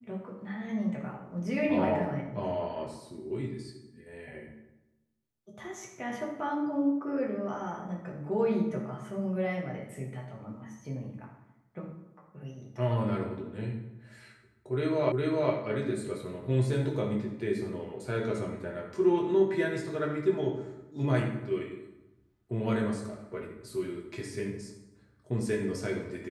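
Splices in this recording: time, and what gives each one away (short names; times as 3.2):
15.12 repeat of the last 0.41 s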